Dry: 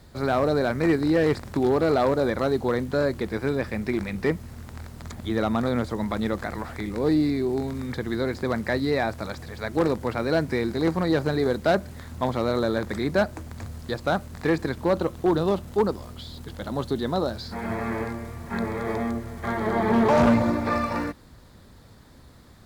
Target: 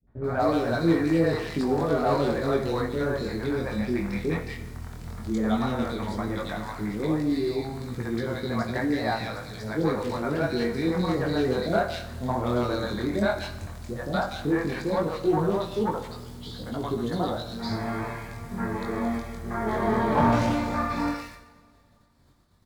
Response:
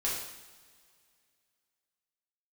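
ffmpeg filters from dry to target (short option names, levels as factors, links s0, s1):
-filter_complex "[0:a]acrossover=split=480|2100[s0][s1][s2];[s1]adelay=70[s3];[s2]adelay=240[s4];[s0][s3][s4]amix=inputs=3:normalize=0,agate=range=0.0224:threshold=0.00891:ratio=3:detection=peak,flanger=delay=17:depth=7.5:speed=0.12,asplit=2[s5][s6];[1:a]atrim=start_sample=2205[s7];[s6][s7]afir=irnorm=-1:irlink=0,volume=0.355[s8];[s5][s8]amix=inputs=2:normalize=0"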